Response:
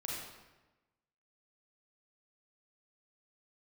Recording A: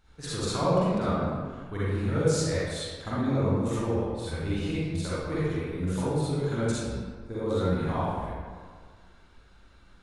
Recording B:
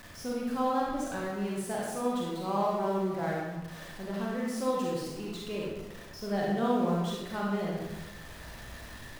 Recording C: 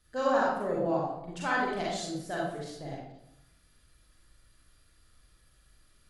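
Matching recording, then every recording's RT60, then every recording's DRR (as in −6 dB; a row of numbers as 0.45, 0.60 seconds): B; 1.7, 1.1, 0.85 seconds; −10.5, −4.5, −5.5 decibels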